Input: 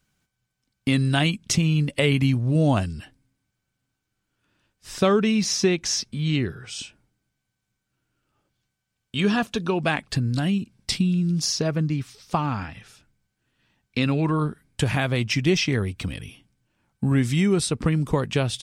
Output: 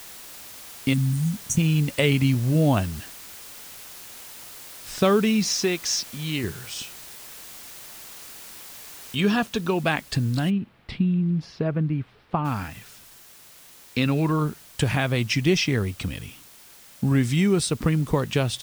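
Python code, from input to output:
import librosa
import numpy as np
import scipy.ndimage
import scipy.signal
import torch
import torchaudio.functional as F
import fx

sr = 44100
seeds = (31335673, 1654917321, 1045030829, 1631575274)

y = fx.spec_erase(x, sr, start_s=0.94, length_s=0.63, low_hz=270.0, high_hz=5700.0)
y = fx.low_shelf(y, sr, hz=270.0, db=-9.5, at=(5.52, 6.44))
y = fx.noise_floor_step(y, sr, seeds[0], at_s=9.15, before_db=-42, after_db=-49, tilt_db=0.0)
y = fx.air_absorb(y, sr, metres=470.0, at=(10.49, 12.44), fade=0.02)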